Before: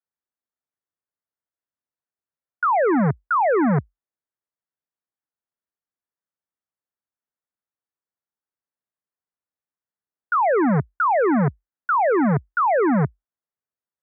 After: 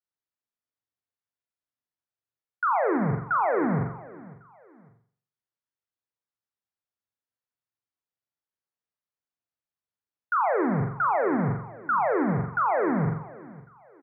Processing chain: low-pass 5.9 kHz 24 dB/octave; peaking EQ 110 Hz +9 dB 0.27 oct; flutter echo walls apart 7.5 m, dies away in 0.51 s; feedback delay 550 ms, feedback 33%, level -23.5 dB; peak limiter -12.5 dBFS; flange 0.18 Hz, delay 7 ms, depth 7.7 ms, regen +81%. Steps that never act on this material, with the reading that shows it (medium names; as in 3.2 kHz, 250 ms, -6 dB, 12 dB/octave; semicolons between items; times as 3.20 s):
low-pass 5.9 kHz: input has nothing above 2.3 kHz